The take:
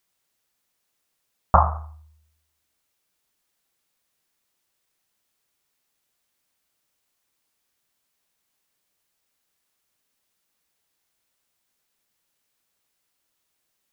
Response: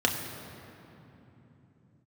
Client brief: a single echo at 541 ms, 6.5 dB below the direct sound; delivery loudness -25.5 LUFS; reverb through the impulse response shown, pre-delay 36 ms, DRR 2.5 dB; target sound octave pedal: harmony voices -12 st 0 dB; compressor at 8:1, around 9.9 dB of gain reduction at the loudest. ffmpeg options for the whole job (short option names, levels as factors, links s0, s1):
-filter_complex "[0:a]acompressor=threshold=0.1:ratio=8,aecho=1:1:541:0.473,asplit=2[s0][s1];[1:a]atrim=start_sample=2205,adelay=36[s2];[s1][s2]afir=irnorm=-1:irlink=0,volume=0.188[s3];[s0][s3]amix=inputs=2:normalize=0,asplit=2[s4][s5];[s5]asetrate=22050,aresample=44100,atempo=2,volume=1[s6];[s4][s6]amix=inputs=2:normalize=0,volume=1.58"